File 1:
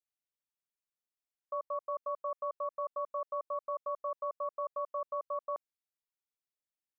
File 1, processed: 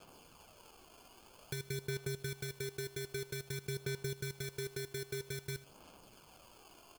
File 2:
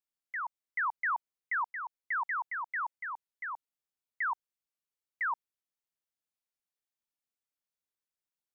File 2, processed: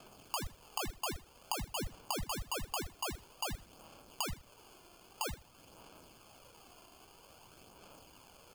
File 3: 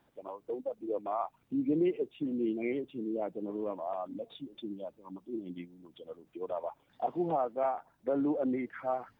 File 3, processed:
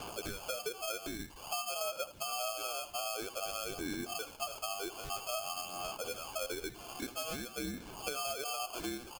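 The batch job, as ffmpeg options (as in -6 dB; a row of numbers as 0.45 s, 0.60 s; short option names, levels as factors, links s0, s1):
-filter_complex "[0:a]aeval=exprs='val(0)+0.5*0.00562*sgn(val(0))':c=same,lowpass=f=2500:t=q:w=0.5098,lowpass=f=2500:t=q:w=0.6013,lowpass=f=2500:t=q:w=0.9,lowpass=f=2500:t=q:w=2.563,afreqshift=-2900,acompressor=threshold=0.00891:ratio=12,acrusher=samples=23:mix=1:aa=0.000001,aphaser=in_gain=1:out_gain=1:delay=2.9:decay=0.35:speed=0.51:type=sinusoidal,highshelf=f=2100:g=10.5,asplit=2[s0][s1];[s1]aecho=0:1:80|160:0.141|0.0353[s2];[s0][s2]amix=inputs=2:normalize=0,volume=1.19"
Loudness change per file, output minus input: -3.5 LU, -4.5 LU, -3.5 LU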